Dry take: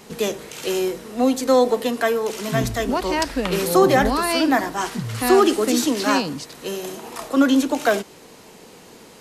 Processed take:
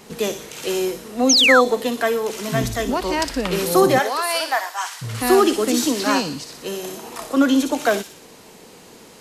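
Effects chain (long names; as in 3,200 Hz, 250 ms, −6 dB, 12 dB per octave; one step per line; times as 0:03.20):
0:03.98–0:05.01: high-pass filter 390 Hz → 900 Hz 24 dB per octave
delay with a high-pass on its return 60 ms, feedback 53%, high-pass 3,700 Hz, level −4.5 dB
0:01.29–0:01.61: sound drawn into the spectrogram fall 1,100–6,900 Hz −14 dBFS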